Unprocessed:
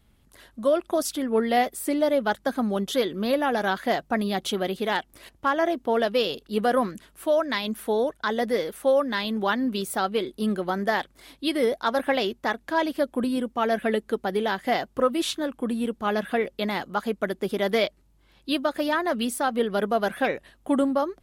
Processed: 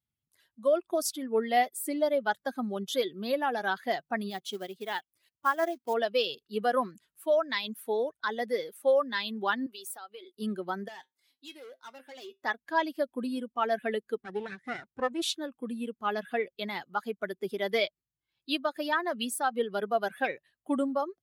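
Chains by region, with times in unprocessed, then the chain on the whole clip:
0:04.30–0:05.94: floating-point word with a short mantissa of 2 bits + expander for the loud parts, over −32 dBFS
0:09.66–0:10.37: high-pass filter 440 Hz + downward compressor 4 to 1, threshold −32 dBFS
0:10.88–0:12.44: low-shelf EQ 200 Hz −11.5 dB + hard clipping −27 dBFS + tuned comb filter 130 Hz, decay 0.25 s
0:14.23–0:15.22: lower of the sound and its delayed copy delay 0.53 ms + high-shelf EQ 2,000 Hz −7 dB + bad sample-rate conversion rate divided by 2×, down none, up filtered
whole clip: spectral dynamics exaggerated over time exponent 1.5; high-pass filter 130 Hz 12 dB per octave; low-shelf EQ 290 Hz −9.5 dB

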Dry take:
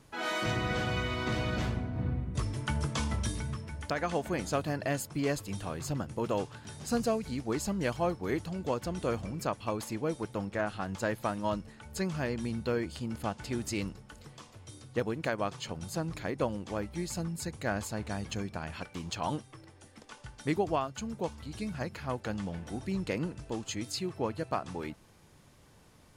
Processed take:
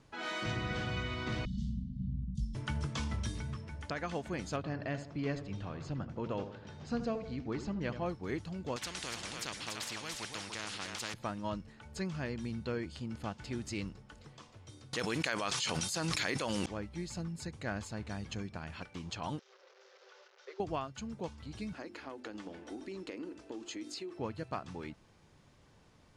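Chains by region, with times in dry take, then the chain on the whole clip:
0:01.45–0:02.55: Chebyshev band-stop filter 220–2,800 Hz, order 4 + spectral tilt −2 dB per octave + phaser with its sweep stopped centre 500 Hz, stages 8
0:04.56–0:08.06: high-frequency loss of the air 130 metres + feedback echo with a low-pass in the loop 79 ms, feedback 52%, low-pass 1,300 Hz, level −9 dB
0:08.76–0:11.14: high-pass filter 270 Hz 6 dB per octave + single-tap delay 290 ms −10 dB + every bin compressed towards the loudest bin 4 to 1
0:14.93–0:16.66: spectral tilt +4 dB per octave + envelope flattener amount 100%
0:19.39–0:20.60: linear delta modulator 32 kbit/s, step −39.5 dBFS + Chebyshev high-pass with heavy ripple 370 Hz, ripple 9 dB + parametric band 1,600 Hz −7.5 dB 2.2 octaves
0:21.73–0:24.19: low shelf with overshoot 210 Hz −12.5 dB, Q 3 + mains-hum notches 50/100/150/200/250/300/350/400 Hz + downward compressor, threshold −33 dBFS
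whole clip: low-pass filter 6,500 Hz 12 dB per octave; dynamic equaliser 650 Hz, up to −4 dB, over −43 dBFS, Q 0.72; level −3.5 dB

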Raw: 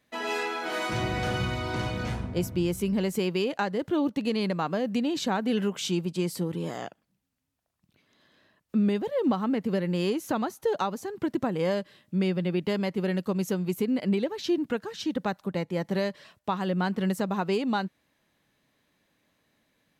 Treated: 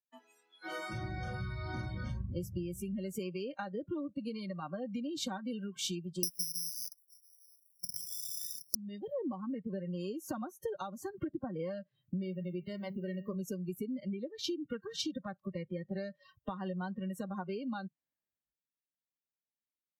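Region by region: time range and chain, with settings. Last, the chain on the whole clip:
0:06.23–0:08.75: hollow resonant body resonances 200/280/2,000 Hz, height 14 dB, ringing for 25 ms + bad sample-rate conversion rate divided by 8×, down none, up zero stuff
0:12.23–0:13.35: notch filter 2,500 Hz, Q 14 + hum removal 97.68 Hz, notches 32 + bit-depth reduction 10 bits, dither none
whole clip: downward compressor 16 to 1, threshold −39 dBFS; noise reduction from a noise print of the clip's start 27 dB; multiband upward and downward expander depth 40%; level +4.5 dB

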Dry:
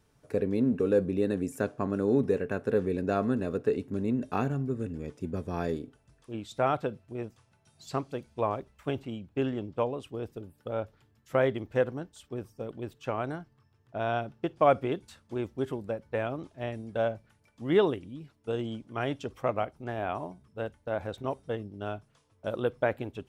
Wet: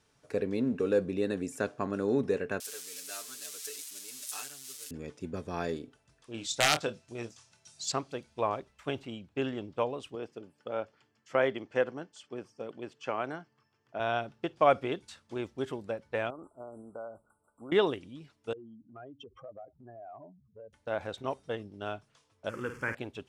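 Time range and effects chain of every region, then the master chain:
0:02.60–0:04.91: spike at every zero crossing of −26.5 dBFS + first difference + comb filter 6.8 ms, depth 81%
0:06.34–0:07.92: parametric band 6,600 Hz +12.5 dB 1.6 octaves + wrap-around overflow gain 16 dB + double-tracking delay 26 ms −9 dB
0:10.15–0:14.00: band-pass filter 160–6,800 Hz + notch filter 3,800 Hz, Q 6
0:16.30–0:17.72: parametric band 120 Hz −10 dB 1.4 octaves + downward compressor 4 to 1, threshold −38 dBFS + linear-phase brick-wall band-stop 1,500–7,400 Hz
0:18.53–0:20.73: expanding power law on the bin magnitudes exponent 2.6 + downward compressor 2.5 to 1, threshold −49 dBFS
0:22.49–0:22.95: converter with a step at zero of −41.5 dBFS + phaser with its sweep stopped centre 1,600 Hz, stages 4 + flutter between parallel walls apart 9 metres, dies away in 0.37 s
whole clip: low-pass filter 7,300 Hz 12 dB per octave; spectral tilt +2 dB per octave

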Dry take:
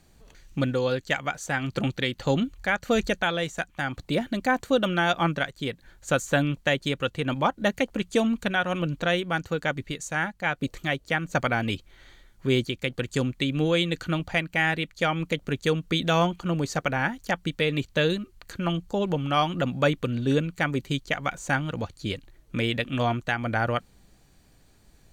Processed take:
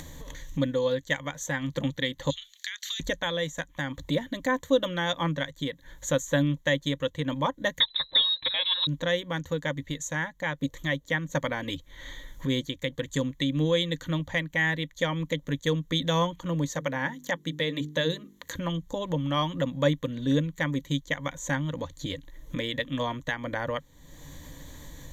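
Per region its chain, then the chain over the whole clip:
0:02.30–0:03.00: Bessel high-pass filter 2,400 Hz, order 8 + parametric band 4,100 Hz +13.5 dB 1.6 octaves + downward compressor, threshold −32 dBFS
0:07.80–0:08.87: comb filter 7.2 ms, depth 43% + voice inversion scrambler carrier 4,000 Hz
0:16.74–0:18.55: high-pass filter 120 Hz + mains-hum notches 50/100/150/200/250/300/350/400/450 Hz
whole clip: EQ curve with evenly spaced ripples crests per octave 1.1, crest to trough 13 dB; upward compression, threshold −22 dBFS; level −5.5 dB

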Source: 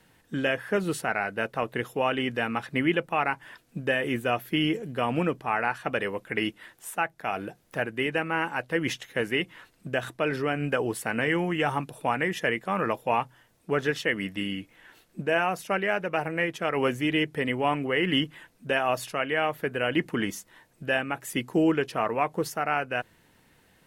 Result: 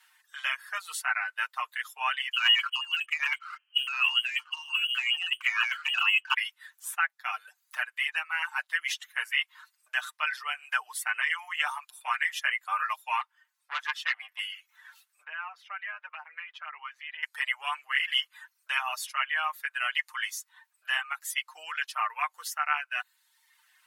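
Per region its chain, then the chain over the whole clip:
0:02.33–0:06.34: voice inversion scrambler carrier 3,100 Hz + leveller curve on the samples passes 1 + compressor whose output falls as the input rises −27 dBFS, ratio −0.5
0:13.21–0:14.39: bass and treble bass +1 dB, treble −9 dB + saturating transformer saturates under 1,400 Hz
0:15.24–0:17.23: downward compressor 3 to 1, threshold −31 dBFS + high-frequency loss of the air 320 metres
whole clip: reverb reduction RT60 0.85 s; Butterworth high-pass 1,000 Hz 36 dB per octave; comb filter 6.6 ms, depth 82%

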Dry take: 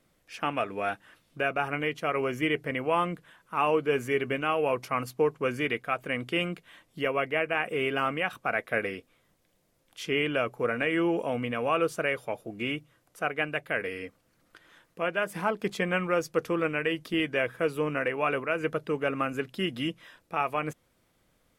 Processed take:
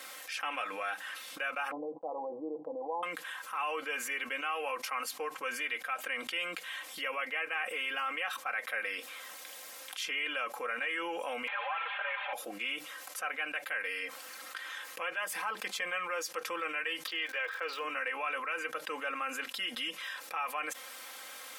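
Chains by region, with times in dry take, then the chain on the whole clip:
0:01.71–0:03.03: Butterworth low-pass 940 Hz 96 dB per octave + noise gate −48 dBFS, range −26 dB + comb filter 6.2 ms, depth 58%
0:11.47–0:12.33: linear delta modulator 16 kbit/s, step −36 dBFS + high-pass filter 660 Hz 24 dB per octave + comb filter 5 ms, depth 98%
0:17.06–0:17.83: Chebyshev band-pass filter 360–4,700 Hz, order 3 + surface crackle 160 per second −47 dBFS
whole clip: high-pass filter 1,000 Hz 12 dB per octave; comb filter 3.8 ms, depth 79%; envelope flattener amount 70%; level −9 dB

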